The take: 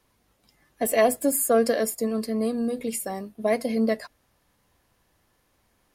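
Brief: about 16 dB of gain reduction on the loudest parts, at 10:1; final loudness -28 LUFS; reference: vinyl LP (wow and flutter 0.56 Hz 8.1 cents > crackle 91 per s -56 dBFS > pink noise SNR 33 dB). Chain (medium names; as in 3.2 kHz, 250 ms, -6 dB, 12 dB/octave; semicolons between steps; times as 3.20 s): compression 10:1, threshold -32 dBFS; wow and flutter 0.56 Hz 8.1 cents; crackle 91 per s -56 dBFS; pink noise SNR 33 dB; trim +8.5 dB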